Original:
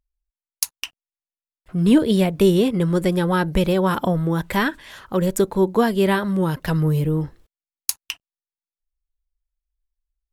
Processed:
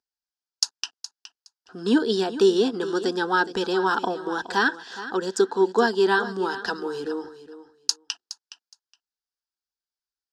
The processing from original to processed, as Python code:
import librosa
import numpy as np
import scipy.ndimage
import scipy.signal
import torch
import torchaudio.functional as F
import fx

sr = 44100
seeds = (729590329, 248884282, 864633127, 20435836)

y = fx.cabinet(x, sr, low_hz=310.0, low_slope=12, high_hz=6500.0, hz=(320.0, 1100.0, 1600.0, 4900.0), db=(-7, -8, 8, 8))
y = fx.fixed_phaser(y, sr, hz=580.0, stages=6)
y = fx.echo_feedback(y, sr, ms=417, feedback_pct=16, wet_db=-14)
y = y * librosa.db_to_amplitude(4.0)